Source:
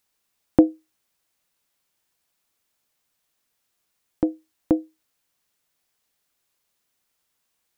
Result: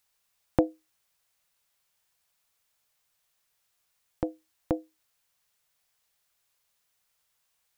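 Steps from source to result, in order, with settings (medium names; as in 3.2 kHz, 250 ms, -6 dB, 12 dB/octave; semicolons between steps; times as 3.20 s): peaking EQ 280 Hz -13 dB 0.91 oct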